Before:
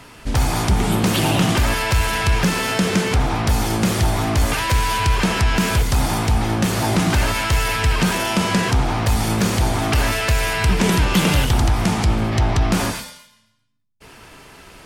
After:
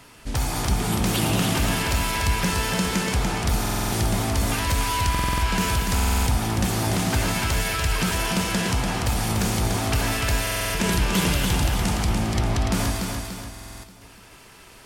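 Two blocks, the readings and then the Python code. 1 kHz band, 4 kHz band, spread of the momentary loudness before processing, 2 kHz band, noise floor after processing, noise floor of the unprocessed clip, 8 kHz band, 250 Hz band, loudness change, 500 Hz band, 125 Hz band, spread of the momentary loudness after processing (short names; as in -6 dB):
-4.5 dB, -3.5 dB, 3 LU, -4.5 dB, -48 dBFS, -50 dBFS, -1.0 dB, -5.0 dB, -4.5 dB, -5.5 dB, -5.0 dB, 3 LU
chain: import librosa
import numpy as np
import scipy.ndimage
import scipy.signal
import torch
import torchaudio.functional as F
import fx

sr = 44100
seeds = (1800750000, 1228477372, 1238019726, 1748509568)

y = fx.high_shelf(x, sr, hz=5000.0, db=6.0)
y = fx.echo_feedback(y, sr, ms=291, feedback_pct=47, wet_db=-4.5)
y = fx.buffer_glitch(y, sr, at_s=(3.6, 5.1, 5.94, 10.42, 13.51), block=2048, repeats=6)
y = y * 10.0 ** (-7.0 / 20.0)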